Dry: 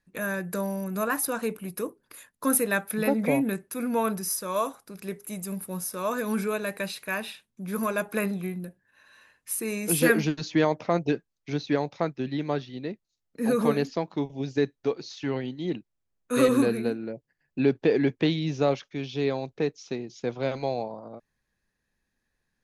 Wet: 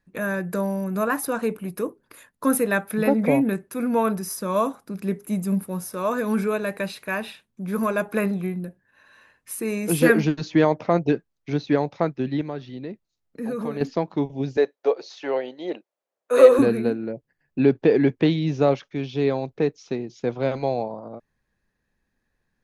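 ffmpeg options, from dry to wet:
-filter_complex "[0:a]asettb=1/sr,asplit=3[s0][s1][s2];[s0]atrim=end=4.364[s3];[s1]atrim=start=4.36:end=5.63,asetpts=PTS-STARTPTS,afade=t=in:d=0.004:c=qsin,afade=t=out:st=1.266:d=0.004:c=qsin,equalizer=f=220:w=1.5:g=7.5[s4];[s2]atrim=start=5.626[s5];[s3][s4]acrossfade=d=0.004:c1=hsin:c2=qsin[s6];[s6][s5]acrossfade=d=0.004:c1=qsin:c2=hsin,asettb=1/sr,asplit=3[s7][s8][s9];[s7]atrim=end=12.414[s10];[s8]atrim=start=12.41:end=13.81,asetpts=PTS-STARTPTS,afade=t=in:d=0.004:c=qsin,afade=t=out:st=1.396:d=0.004:c=qsin,acompressor=threshold=0.0141:ratio=2:attack=3.2:release=140:knee=1:detection=peak[s11];[s9]atrim=start=13.806[s12];[s10][s11]acrossfade=d=0.004:c1=hsin:c2=qsin[s13];[s13][s12]acrossfade=d=0.004:c1=qsin:c2=hsin,asettb=1/sr,asplit=3[s14][s15][s16];[s14]atrim=end=14.574[s17];[s15]atrim=start=14.57:end=16.59,asetpts=PTS-STARTPTS,afade=t=in:d=0.004:c=qsin,afade=t=out:st=2.016:d=0.004:c=qsin,highpass=f=560:t=q:w=2.7[s18];[s16]atrim=start=16.586[s19];[s17][s18]acrossfade=d=0.004:c1=hsin:c2=qsin[s20];[s20][s19]acrossfade=d=0.004:c1=qsin:c2=hsin,highshelf=f=2600:g=-8.5,volume=1.78"

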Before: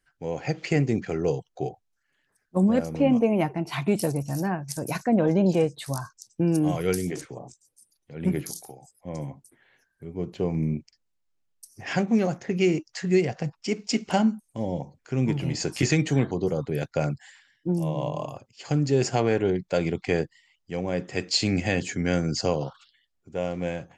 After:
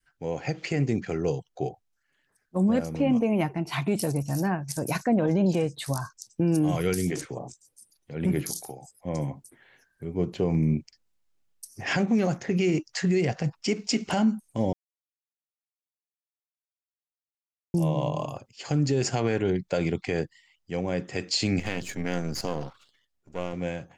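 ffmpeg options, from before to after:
-filter_complex "[0:a]asettb=1/sr,asplit=3[s0][s1][s2];[s0]atrim=end=21.594[s3];[s1]atrim=start=21.59:end=23.53,asetpts=PTS-STARTPTS,afade=t=in:d=0.004:c=qsin,afade=t=out:st=1.936:d=0.004:c=qsin,aeval=exprs='if(lt(val(0),0),0.251*val(0),val(0))':c=same[s4];[s2]atrim=start=23.526[s5];[s3][s4]acrossfade=d=0.004:c1=hsin:c2=qsin[s6];[s6][s5]acrossfade=d=0.004:c1=qsin:c2=hsin,asplit=3[s7][s8][s9];[s7]atrim=end=14.73,asetpts=PTS-STARTPTS,afade=t=out:st=14.726:d=0.004:c=hsin[s10];[s8]atrim=start=14.73:end=17.74,asetpts=PTS-STARTPTS,volume=0[s11];[s9]atrim=start=17.74,asetpts=PTS-STARTPTS,afade=t=in:d=0.004:c=hsin[s12];[s10][s11][s12]concat=n=3:v=0:a=1,adynamicequalizer=threshold=0.0224:dfrequency=560:dqfactor=0.75:tfrequency=560:tqfactor=0.75:attack=5:release=100:ratio=0.375:range=2.5:mode=cutabove:tftype=bell,dynaudnorm=f=890:g=13:m=1.68,alimiter=limit=0.168:level=0:latency=1:release=53"

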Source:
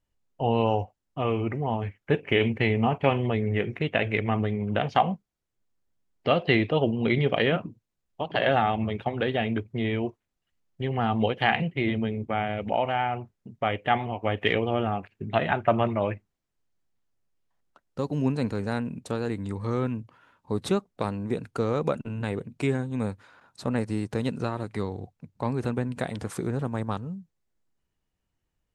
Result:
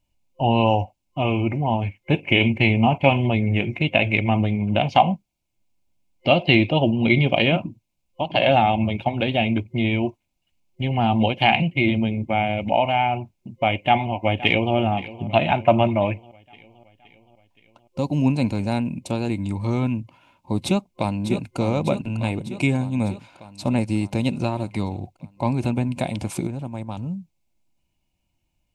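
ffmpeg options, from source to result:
-filter_complex "[0:a]asplit=2[s0][s1];[s1]afade=t=in:st=13.78:d=0.01,afade=t=out:st=14.75:d=0.01,aecho=0:1:520|1040|1560|2080|2600|3120:0.141254|0.0847523|0.0508514|0.0305108|0.0183065|0.0109839[s2];[s0][s2]amix=inputs=2:normalize=0,asplit=2[s3][s4];[s4]afade=t=in:st=20.64:d=0.01,afade=t=out:st=21.56:d=0.01,aecho=0:1:600|1200|1800|2400|3000|3600|4200|4800|5400:0.375837|0.244294|0.158791|0.103214|0.0670893|0.0436081|0.0283452|0.0184244|0.0119759[s5];[s3][s5]amix=inputs=2:normalize=0,asplit=3[s6][s7][s8];[s6]atrim=end=26.472[s9];[s7]atrim=start=26.468:end=26.972,asetpts=PTS-STARTPTS,volume=0.422[s10];[s8]atrim=start=26.968[s11];[s9][s10]acrossfade=d=0.004:c1=hsin:c2=hsin[s12];[s12][s11]acrossfade=d=0.004:c1=hsin:c2=hsin,superequalizer=7b=0.316:10b=0.316:11b=0.282:12b=1.58,volume=2.11"

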